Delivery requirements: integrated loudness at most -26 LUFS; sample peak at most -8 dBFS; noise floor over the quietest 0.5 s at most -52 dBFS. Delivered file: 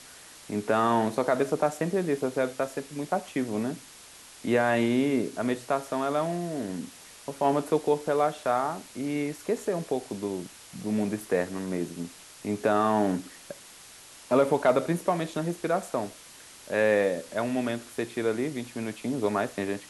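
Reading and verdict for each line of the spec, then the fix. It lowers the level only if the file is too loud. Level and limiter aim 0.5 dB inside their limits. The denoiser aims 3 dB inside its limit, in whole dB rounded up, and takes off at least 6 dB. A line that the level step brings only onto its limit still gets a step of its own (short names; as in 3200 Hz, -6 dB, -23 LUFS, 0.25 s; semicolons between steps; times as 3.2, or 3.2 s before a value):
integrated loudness -28.0 LUFS: OK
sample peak -11.0 dBFS: OK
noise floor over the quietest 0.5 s -49 dBFS: fail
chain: denoiser 6 dB, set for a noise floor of -49 dBFS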